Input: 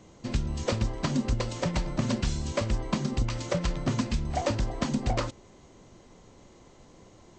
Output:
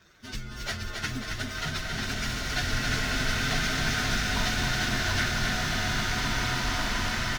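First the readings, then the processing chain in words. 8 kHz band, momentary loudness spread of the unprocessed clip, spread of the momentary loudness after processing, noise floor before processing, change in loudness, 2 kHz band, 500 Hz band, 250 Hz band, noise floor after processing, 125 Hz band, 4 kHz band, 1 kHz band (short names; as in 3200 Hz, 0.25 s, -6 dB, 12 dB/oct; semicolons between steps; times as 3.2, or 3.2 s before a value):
+7.5 dB, 2 LU, 7 LU, -55 dBFS, +2.0 dB, +14.0 dB, -4.5 dB, -3.0 dB, -39 dBFS, -1.5 dB, +10.5 dB, +4.0 dB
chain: inharmonic rescaling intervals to 127%; band shelf 2900 Hz +16 dB 2.7 oct; feedback echo 0.27 s, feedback 60%, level -5 dB; bloom reverb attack 2.38 s, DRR -5.5 dB; gain -6.5 dB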